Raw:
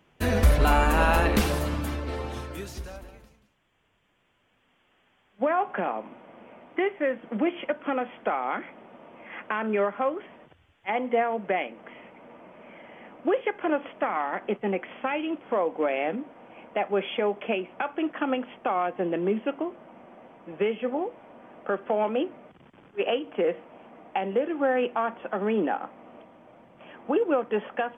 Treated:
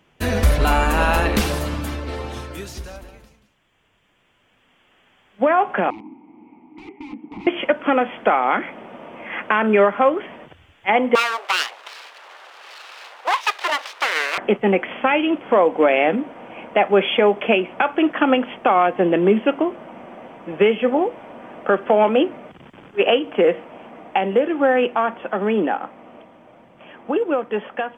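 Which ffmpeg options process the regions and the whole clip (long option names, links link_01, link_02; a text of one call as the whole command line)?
ffmpeg -i in.wav -filter_complex "[0:a]asettb=1/sr,asplit=3[link_01][link_02][link_03];[link_01]atrim=end=5.904[link_04];[link_02]atrim=start=5.9:end=7.47,asetpts=PTS-STARTPTS,afade=type=in:duration=0.004:curve=qsin,afade=type=out:start_time=1.566:duration=0.004:curve=qsin,aeval=exprs='(mod(26.6*val(0)+1,2)-1)/26.6':channel_layout=same,asplit=3[link_05][link_06][link_07];[link_05]bandpass=frequency=300:width_type=q:width=8,volume=0dB[link_08];[link_06]bandpass=frequency=870:width_type=q:width=8,volume=-6dB[link_09];[link_07]bandpass=frequency=2240:width_type=q:width=8,volume=-9dB[link_10];[link_08][link_09][link_10]amix=inputs=3:normalize=0,aemphasis=mode=reproduction:type=riaa[link_11];[link_03]atrim=start=7.466[link_12];[link_04][link_11]acrossfade=duration=0.004:curve1=hsin:curve2=qsin[link_13];[link_13][link_12]acrossfade=duration=0.004:curve1=qsin:curve2=hsin,asettb=1/sr,asplit=3[link_14][link_15][link_16];[link_14]atrim=end=11.154[link_17];[link_15]atrim=start=11.15:end=14.38,asetpts=PTS-STARTPTS,afade=type=in:duration=0.004:curve=qsin,afade=type=out:start_time=3.226:duration=0.004:curve=qsin,equalizer=frequency=5700:width=0.79:gain=7,aeval=exprs='abs(val(0))':channel_layout=same,highpass=frequency=530:width=0.5412,highpass=frequency=530:width=1.3066[link_18];[link_16]atrim=start=14.376[link_19];[link_17][link_18]acrossfade=duration=0.004:curve1=hsin:curve2=qsin[link_20];[link_20][link_19]acrossfade=duration=0.004:curve1=qsin:curve2=hsin,equalizer=frequency=4800:width=0.5:gain=3,dynaudnorm=framelen=870:gausssize=11:maxgain=7.5dB,volume=3dB" out.wav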